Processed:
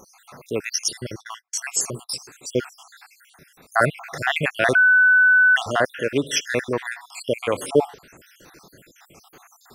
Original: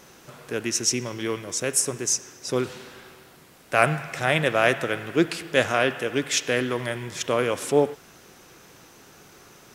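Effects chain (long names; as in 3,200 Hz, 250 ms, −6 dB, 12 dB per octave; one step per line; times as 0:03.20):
time-frequency cells dropped at random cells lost 63%
0:00.84–0:02.18: noise gate −40 dBFS, range −43 dB
0:04.75–0:05.56: beep over 1,500 Hz −15 dBFS
level +4 dB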